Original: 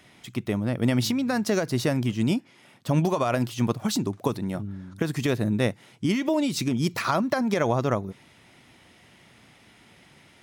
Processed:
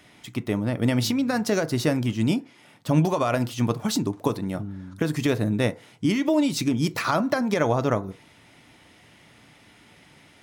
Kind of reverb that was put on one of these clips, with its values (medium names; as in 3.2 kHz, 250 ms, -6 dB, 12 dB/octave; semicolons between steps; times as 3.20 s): FDN reverb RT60 0.35 s, low-frequency decay 0.75×, high-frequency decay 0.4×, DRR 11 dB; trim +1 dB